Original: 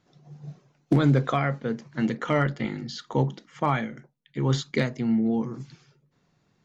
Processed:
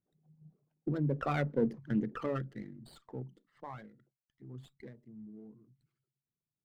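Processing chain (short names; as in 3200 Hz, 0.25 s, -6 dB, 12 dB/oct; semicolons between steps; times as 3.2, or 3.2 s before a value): formant sharpening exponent 2; Doppler pass-by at 1.67, 17 m/s, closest 2.9 m; running maximum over 5 samples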